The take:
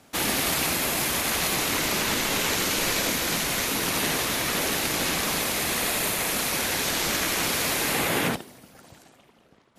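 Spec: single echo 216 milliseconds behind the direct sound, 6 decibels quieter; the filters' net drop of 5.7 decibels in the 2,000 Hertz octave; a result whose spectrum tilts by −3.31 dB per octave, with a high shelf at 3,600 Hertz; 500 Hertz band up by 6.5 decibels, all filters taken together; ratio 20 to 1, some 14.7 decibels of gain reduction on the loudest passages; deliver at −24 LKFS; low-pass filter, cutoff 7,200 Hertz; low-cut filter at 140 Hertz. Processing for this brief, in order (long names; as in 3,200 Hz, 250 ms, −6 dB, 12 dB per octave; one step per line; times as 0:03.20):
high-pass filter 140 Hz
low-pass filter 7,200 Hz
parametric band 500 Hz +8.5 dB
parametric band 2,000 Hz −5.5 dB
high-shelf EQ 3,600 Hz −7 dB
downward compressor 20 to 1, threshold −33 dBFS
single-tap delay 216 ms −6 dB
level +12 dB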